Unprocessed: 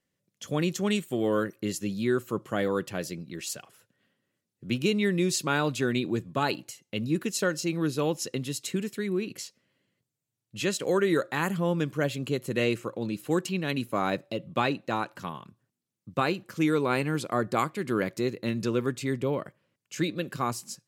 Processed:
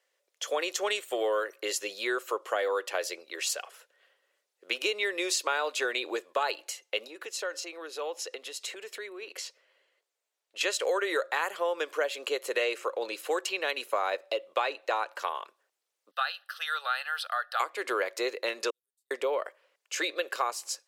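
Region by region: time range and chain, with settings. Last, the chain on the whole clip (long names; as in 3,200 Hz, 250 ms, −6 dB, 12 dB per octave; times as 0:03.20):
0:07.07–0:10.61: high-shelf EQ 5,500 Hz −5 dB + downward compressor 2.5 to 1, threshold −41 dBFS
0:16.11–0:17.60: high-pass filter 1,000 Hz 24 dB per octave + phaser with its sweep stopped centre 1,500 Hz, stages 8
0:18.70–0:19.11: inverse Chebyshev high-pass filter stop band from 2,500 Hz, stop band 70 dB + high-frequency loss of the air 470 metres
whole clip: Butterworth high-pass 460 Hz 36 dB per octave; high-shelf EQ 8,300 Hz −7.5 dB; downward compressor 4 to 1, threshold −35 dBFS; level +8.5 dB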